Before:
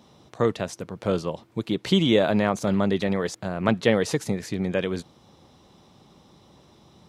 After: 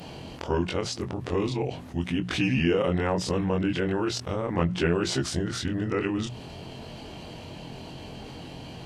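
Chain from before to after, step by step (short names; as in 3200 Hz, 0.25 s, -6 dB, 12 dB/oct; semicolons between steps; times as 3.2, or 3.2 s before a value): short-time reversal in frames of 37 ms; varispeed -20%; notches 60/120/180 Hz; fast leveller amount 50%; gain -3 dB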